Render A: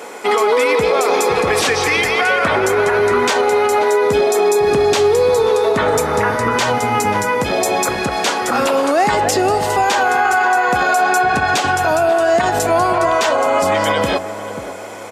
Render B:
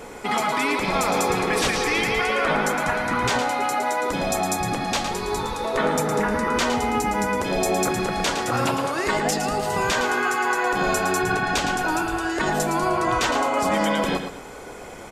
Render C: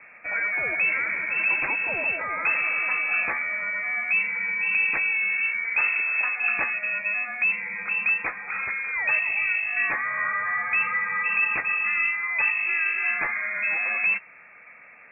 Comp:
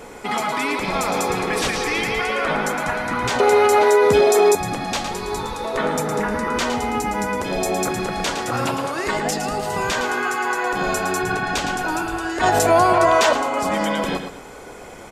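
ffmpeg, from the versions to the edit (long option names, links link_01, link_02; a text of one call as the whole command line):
ffmpeg -i take0.wav -i take1.wav -filter_complex "[0:a]asplit=2[link_01][link_02];[1:a]asplit=3[link_03][link_04][link_05];[link_03]atrim=end=3.402[link_06];[link_01]atrim=start=3.398:end=4.552[link_07];[link_04]atrim=start=4.548:end=12.422[link_08];[link_02]atrim=start=12.418:end=13.332[link_09];[link_05]atrim=start=13.328[link_10];[link_06][link_07]acrossfade=duration=0.004:curve1=hsin:curve2=hsin[link_11];[link_11][link_08]acrossfade=duration=0.004:curve1=hsin:curve2=hsin[link_12];[link_12][link_09]acrossfade=duration=0.004:curve1=hsin:curve2=hsin[link_13];[link_13][link_10]acrossfade=duration=0.004:curve1=hsin:curve2=hsin" out.wav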